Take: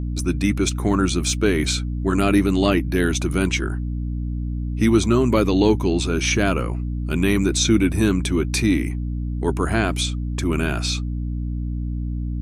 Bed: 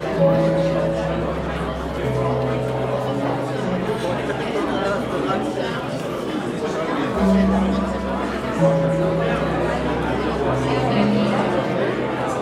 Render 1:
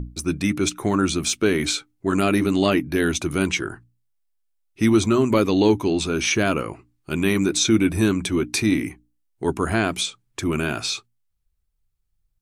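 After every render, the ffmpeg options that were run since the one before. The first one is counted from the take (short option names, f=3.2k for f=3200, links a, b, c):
-af "bandreject=f=60:t=h:w=6,bandreject=f=120:t=h:w=6,bandreject=f=180:t=h:w=6,bandreject=f=240:t=h:w=6,bandreject=f=300:t=h:w=6"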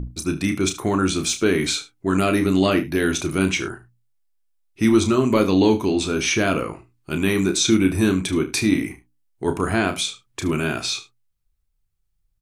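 -filter_complex "[0:a]asplit=2[a][b];[b]adelay=32,volume=-8dB[c];[a][c]amix=inputs=2:normalize=0,aecho=1:1:74:0.158"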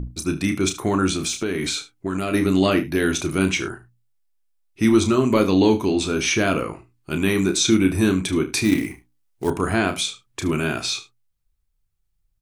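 -filter_complex "[0:a]asettb=1/sr,asplit=3[a][b][c];[a]atrim=end=1.134[d];[b]atrim=start=1.13:end=2.34,asetpts=PTS-STARTPTS,afade=t=in:d=0.004:c=qsin,afade=t=out:st=1.206:d=0.004:c=qsin,acompressor=threshold=-20dB:ratio=6:attack=3.2:release=140:knee=1:detection=peak[e];[c]atrim=start=2.336[f];[d][e]acrossfade=d=0.004:c1=hsin:c2=qsin[g];[g][f]acrossfade=d=0.004:c1=qsin:c2=hsin,asettb=1/sr,asplit=3[h][i][j];[h]atrim=end=8.644[k];[i]atrim=start=8.64:end=9.5,asetpts=PTS-STARTPTS,afade=t=in:d=0.004:c=qsin,afade=t=out:st=0.856:d=0.004:c=qsin,acrusher=bits=5:mode=log:mix=0:aa=0.000001[l];[j]atrim=start=9.496[m];[k][l]acrossfade=d=0.004:c1=hsin:c2=qsin[n];[n][m]acrossfade=d=0.004:c1=qsin:c2=hsin"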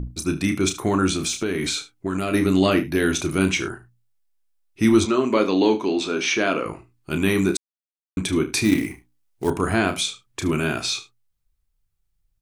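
-filter_complex "[0:a]asettb=1/sr,asplit=3[a][b][c];[a]atrim=end=5.054[d];[b]atrim=start=5.05:end=6.66,asetpts=PTS-STARTPTS,afade=t=in:d=0.004:c=qsin,afade=t=out:st=1.606:d=0.004:c=qsin,highpass=270,lowpass=5.6k[e];[c]atrim=start=6.656[f];[d][e]acrossfade=d=0.004:c1=hsin:c2=qsin[g];[g][f]acrossfade=d=0.004:c1=qsin:c2=hsin,asplit=3[h][i][j];[h]atrim=end=7.57,asetpts=PTS-STARTPTS,afade=t=out:st=7.566:d=0.004:c=hsin[k];[i]atrim=start=7.57:end=8.17,asetpts=PTS-STARTPTS,volume=0[l];[j]atrim=start=8.17,asetpts=PTS-STARTPTS,afade=t=in:d=0.004:c=hsin[m];[k][l][m]concat=n=3:v=0:a=1"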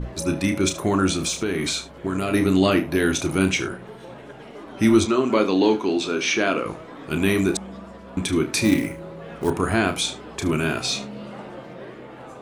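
-filter_complex "[1:a]volume=-17.5dB[a];[0:a][a]amix=inputs=2:normalize=0"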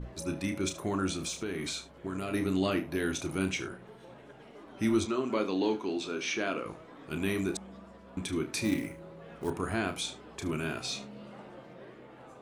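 -af "volume=-11dB"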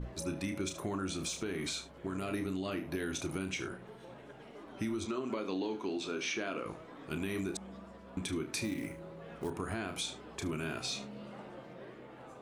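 -af "alimiter=limit=-21.5dB:level=0:latency=1:release=105,acompressor=threshold=-33dB:ratio=4"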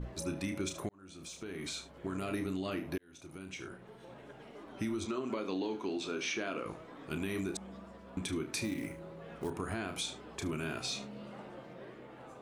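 -filter_complex "[0:a]asplit=3[a][b][c];[a]atrim=end=0.89,asetpts=PTS-STARTPTS,afade=t=out:st=0.886:d=0.004:c=hsin[d];[b]atrim=start=0.89:end=2.98,asetpts=PTS-STARTPTS,afade=t=in:d=1.14,afade=t=out:st=2.086:d=0.004:c=hsin[e];[c]atrim=start=2.98,asetpts=PTS-STARTPTS,afade=t=in:d=1.26[f];[d][e][f]concat=n=3:v=0:a=1"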